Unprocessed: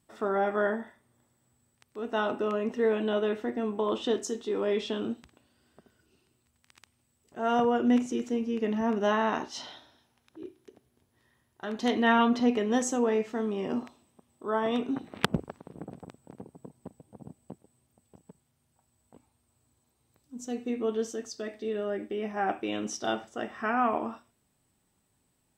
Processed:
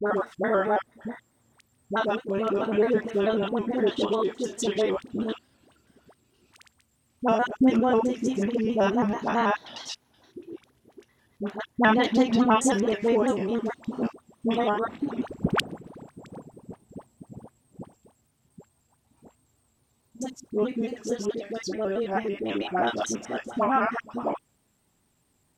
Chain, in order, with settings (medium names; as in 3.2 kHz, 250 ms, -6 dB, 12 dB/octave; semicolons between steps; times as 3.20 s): slices played last to first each 95 ms, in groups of 4; phase dispersion highs, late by 68 ms, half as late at 680 Hz; vibrato with a chosen wave square 4.6 Hz, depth 100 cents; trim +4 dB